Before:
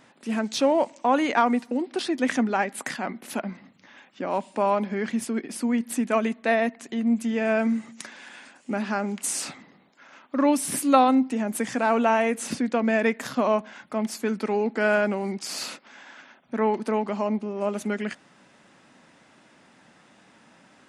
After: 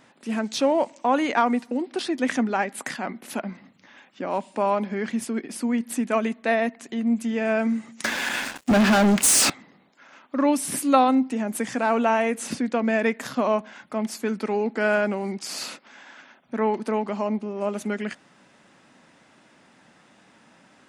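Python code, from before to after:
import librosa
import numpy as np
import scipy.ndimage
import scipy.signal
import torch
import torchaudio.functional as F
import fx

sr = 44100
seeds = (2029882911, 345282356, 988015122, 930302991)

y = fx.leveller(x, sr, passes=5, at=(8.04, 9.5))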